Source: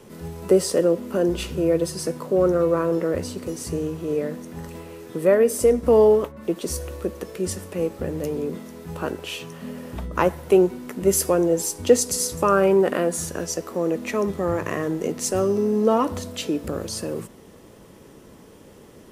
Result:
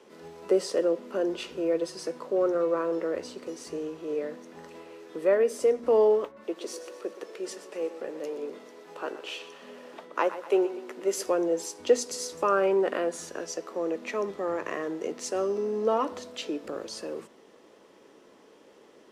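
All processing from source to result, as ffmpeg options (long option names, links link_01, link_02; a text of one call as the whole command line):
ffmpeg -i in.wav -filter_complex "[0:a]asettb=1/sr,asplit=3[link_01][link_02][link_03];[link_01]atrim=end=6.444[link_04];[link_02]atrim=start=6.44:end=11.26,asetpts=PTS-STARTPTS,afade=type=in:duration=0.004:curve=qsin,afade=type=out:start_time=4.816:duration=0.004:curve=qsin,highpass=290,aecho=1:1:122|244|366|488|610:0.211|0.108|0.055|0.028|0.0143,atrim=end_sample=212562[link_05];[link_03]atrim=start=11.256[link_06];[link_04][link_05]acrossfade=duration=0.004:curve1=hsin:curve2=qsin[link_07];[link_07][link_06]acrossfade=duration=0.004:curve1=qsin:curve2=hsin,acrossover=split=260 6700:gain=0.0631 1 0.158[link_08][link_09][link_10];[link_08][link_09][link_10]amix=inputs=3:normalize=0,bandreject=frequency=60:width_type=h:width=6,bandreject=frequency=120:width_type=h:width=6,bandreject=frequency=180:width_type=h:width=6,bandreject=frequency=240:width_type=h:width=6,volume=-5dB" out.wav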